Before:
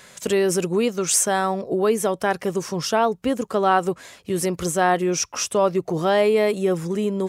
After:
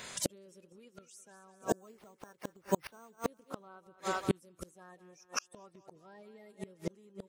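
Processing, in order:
spectral magnitudes quantised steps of 30 dB
0:01.62–0:03.22: bad sample-rate conversion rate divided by 6×, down none, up hold
on a send: feedback echo with a high-pass in the loop 199 ms, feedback 52%, high-pass 380 Hz, level −11.5 dB
on the sum: gate with flip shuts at −17 dBFS, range −37 dB
level +1 dB

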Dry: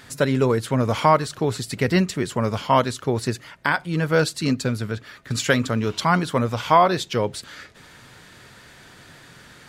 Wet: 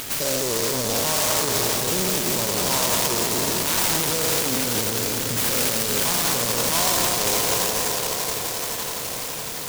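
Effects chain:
peak hold with a decay on every bin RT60 2.65 s
in parallel at −2 dB: upward compression, threshold −19 dBFS
on the sum: soft clipping −9.5 dBFS, distortion −10 dB
low-shelf EQ 440 Hz −12 dB
brickwall limiter −14.5 dBFS, peak gain reduction 7.5 dB
on a send: echo that builds up and dies away 85 ms, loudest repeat 8, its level −17 dB
on the sum: short delay modulated by noise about 5,800 Hz, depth 0.22 ms

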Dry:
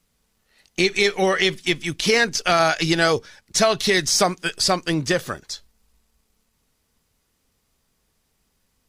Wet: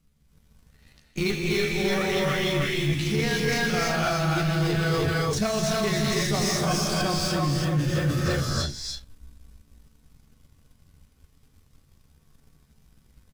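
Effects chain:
in parallel at −9.5 dB: wrap-around overflow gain 19 dB
on the sum: bass and treble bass +14 dB, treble −2 dB
single-tap delay 202 ms −3 dB
time stretch by overlap-add 1.5×, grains 84 ms
reverb whose tail is shaped and stops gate 360 ms rising, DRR −3.5 dB
reversed playback
downward compressor 8 to 1, threshold −19 dBFS, peak gain reduction 15 dB
reversed playback
leveller curve on the samples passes 1
level −5.5 dB

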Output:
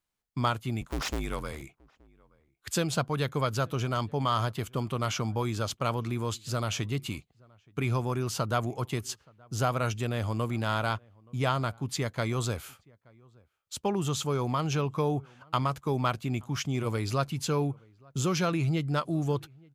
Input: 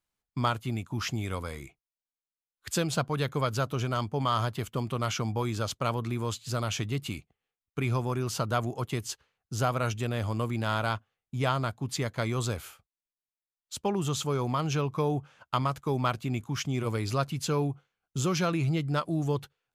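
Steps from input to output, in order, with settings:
0:00.81–0:01.62: sub-harmonics by changed cycles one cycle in 2, inverted
slap from a distant wall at 150 metres, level −27 dB

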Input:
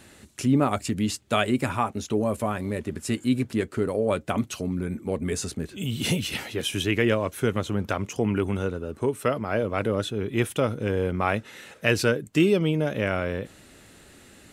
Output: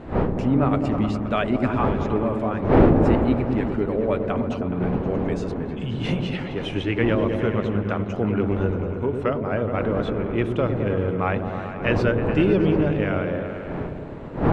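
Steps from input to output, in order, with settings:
wind on the microphone 450 Hz −29 dBFS
low-pass filter 2,500 Hz 12 dB per octave
echo whose low-pass opens from repeat to repeat 105 ms, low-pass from 400 Hz, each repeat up 1 octave, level −3 dB

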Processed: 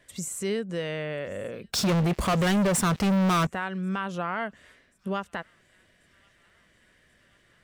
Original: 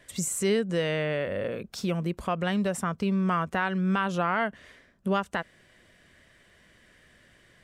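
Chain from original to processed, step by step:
delay with a high-pass on its return 1,085 ms, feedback 62%, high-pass 2,200 Hz, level −24 dB
0:01.73–0:03.47: leveller curve on the samples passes 5
level −4 dB

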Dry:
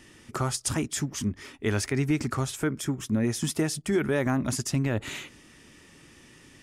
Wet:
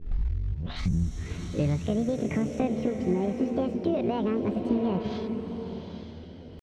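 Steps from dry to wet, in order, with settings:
turntable start at the beginning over 2.05 s
high-pass filter 46 Hz 6 dB per octave
RIAA equalisation playback
downward compressor 20 to 1, threshold −23 dBFS, peak gain reduction 15 dB
sound drawn into the spectrogram noise, 0:00.78–0:02.63, 3,200–7,100 Hz −39 dBFS
floating-point word with a short mantissa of 4 bits
mains hum 50 Hz, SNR 19 dB
pitch shifter +9 semitones
high-frequency loss of the air 180 metres
slow-attack reverb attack 870 ms, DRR 5 dB

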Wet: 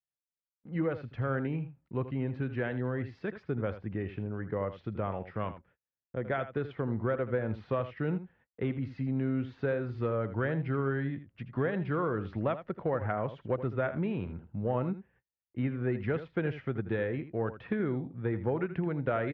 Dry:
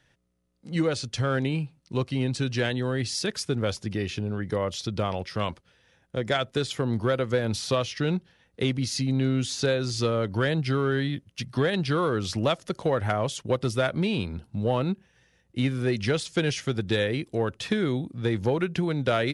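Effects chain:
low-pass filter 2,000 Hz 24 dB per octave
on a send: single-tap delay 80 ms −12.5 dB
on the sum: noise gate −55 dBFS, range −35 dB
level −6 dB

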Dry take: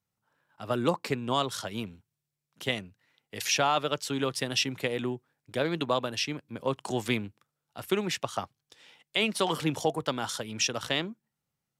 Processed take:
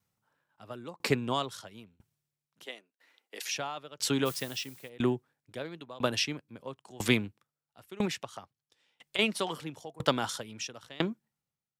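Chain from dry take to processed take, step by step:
0:02.66–0:03.51: high-pass filter 300 Hz 24 dB per octave
0:04.25–0:04.88: background noise blue −41 dBFS
0:08.05–0:09.19: downward compressor 6 to 1, threshold −36 dBFS, peak gain reduction 12.5 dB
tremolo with a ramp in dB decaying 1 Hz, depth 27 dB
level +6.5 dB

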